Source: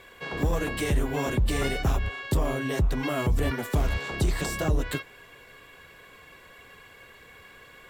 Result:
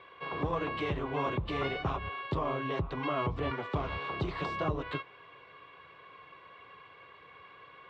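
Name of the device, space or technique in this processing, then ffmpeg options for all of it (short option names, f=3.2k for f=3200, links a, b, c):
guitar cabinet: -af "highpass=110,equalizer=f=230:t=q:w=4:g=-9,equalizer=f=1.1k:t=q:w=4:g=9,equalizer=f=1.7k:t=q:w=4:g=-5,lowpass=f=3.6k:w=0.5412,lowpass=f=3.6k:w=1.3066,volume=-4dB"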